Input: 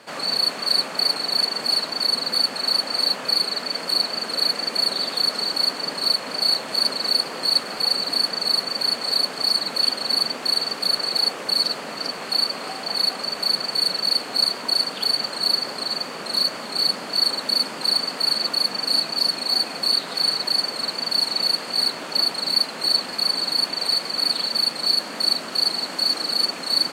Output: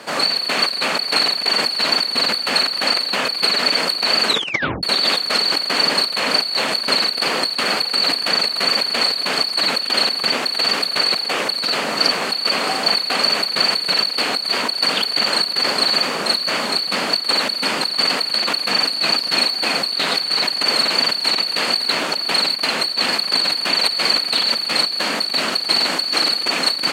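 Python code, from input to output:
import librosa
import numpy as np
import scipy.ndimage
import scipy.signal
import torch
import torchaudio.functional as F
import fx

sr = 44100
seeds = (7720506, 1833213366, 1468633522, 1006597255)

y = fx.edit(x, sr, fx.tape_stop(start_s=4.27, length_s=0.56), tone=tone)
y = fx.dynamic_eq(y, sr, hz=2700.0, q=0.96, threshold_db=-35.0, ratio=4.0, max_db=8)
y = scipy.signal.sosfilt(scipy.signal.butter(2, 120.0, 'highpass', fs=sr, output='sos'), y)
y = fx.over_compress(y, sr, threshold_db=-24.0, ratio=-1.0)
y = y * librosa.db_to_amplitude(5.0)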